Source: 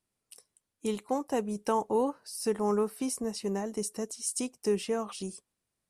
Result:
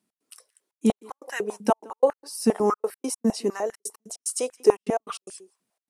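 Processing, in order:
slap from a distant wall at 29 metres, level −24 dB
gate pattern "x.xxxxx.x." 148 BPM −60 dB
high-pass on a step sequencer 10 Hz 210–1,700 Hz
level +4 dB

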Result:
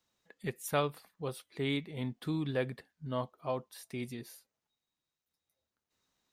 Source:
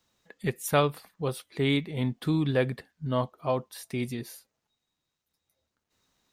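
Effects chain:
low-shelf EQ 160 Hz −3.5 dB
level −7 dB

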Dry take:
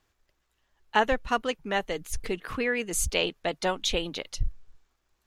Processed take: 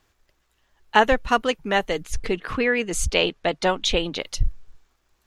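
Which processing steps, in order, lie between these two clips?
0:02.03–0:04.20: high-frequency loss of the air 53 metres
level +6.5 dB

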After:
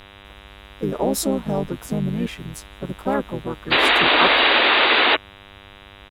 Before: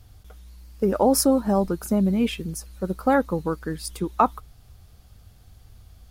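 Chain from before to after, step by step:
sound drawn into the spectrogram noise, 0:03.71–0:05.16, 310–4,000 Hz −13 dBFS
pitch-shifted copies added −5 semitones −2 dB, +3 semitones −12 dB
hum with harmonics 100 Hz, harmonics 39, −40 dBFS −1 dB per octave
level −5 dB

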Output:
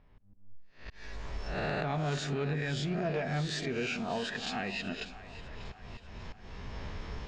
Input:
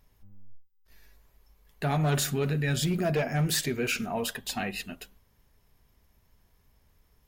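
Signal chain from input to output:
peak hold with a rise ahead of every peak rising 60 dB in 0.52 s
camcorder AGC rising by 25 dB per second
low-pass that shuts in the quiet parts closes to 2,700 Hz, open at −21 dBFS
Bessel low-pass filter 4,200 Hz, order 8
low-shelf EQ 96 Hz −4.5 dB
volume swells 472 ms
downward compressor 1.5 to 1, threshold −44 dBFS, peak gain reduction 8 dB
echo with a time of its own for lows and highs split 490 Hz, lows 186 ms, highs 592 ms, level −15 dB

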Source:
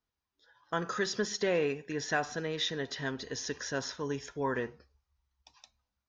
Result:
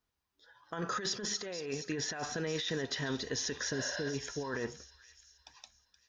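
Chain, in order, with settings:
healed spectral selection 0:03.76–0:04.11, 500–5,400 Hz before
compressor whose output falls as the input rises −36 dBFS, ratio −1
delay with a high-pass on its return 473 ms, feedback 44%, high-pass 3,400 Hz, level −9 dB

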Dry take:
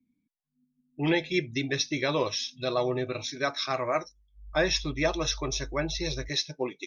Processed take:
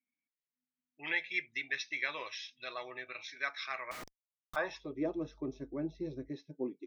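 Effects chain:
band-pass filter sweep 2,000 Hz → 270 Hz, 0:04.38–0:05.13
0:03.91–0:04.56: comparator with hysteresis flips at −53.5 dBFS

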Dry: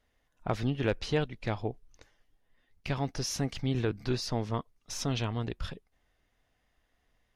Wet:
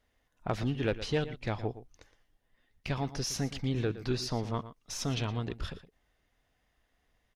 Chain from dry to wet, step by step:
one-sided soft clipper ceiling −16 dBFS
slap from a distant wall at 20 metres, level −14 dB

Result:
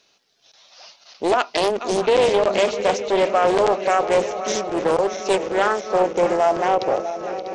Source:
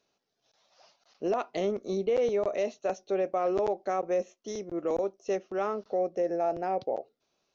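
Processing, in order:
feedback delay that plays each chunk backwards 323 ms, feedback 81%, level −11.5 dB
parametric band 3,700 Hz +11 dB 3 octaves
highs frequency-modulated by the lows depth 0.47 ms
level +8.5 dB

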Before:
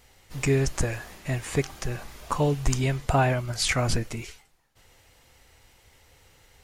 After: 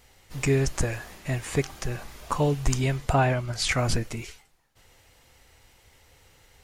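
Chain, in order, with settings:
0:03.13–0:03.71: high-shelf EQ 11,000 Hz −10 dB

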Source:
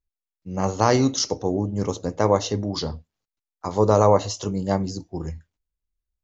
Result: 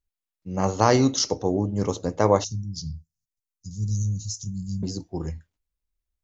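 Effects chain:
0:02.44–0:04.83: elliptic band-stop filter 160–5,700 Hz, stop band 70 dB

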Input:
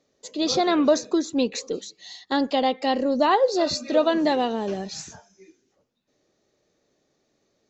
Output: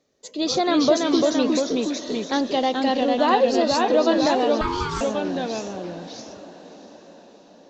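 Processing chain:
feedback delay with all-pass diffusion 622 ms, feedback 54%, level −16 dB
delay with pitch and tempo change per echo 293 ms, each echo −1 semitone, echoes 2
0:04.61–0:05.01: ring modulation 650 Hz

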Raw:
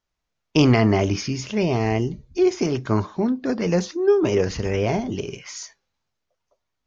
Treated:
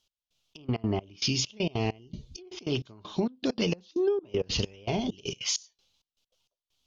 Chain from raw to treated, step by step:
treble cut that deepens with the level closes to 1,600 Hz, closed at −14.5 dBFS
high shelf with overshoot 2,400 Hz +9 dB, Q 3
downward compressor 12 to 1, threshold −23 dBFS, peak gain reduction 13.5 dB
gate pattern "x...xxx..x.x" 197 BPM −24 dB

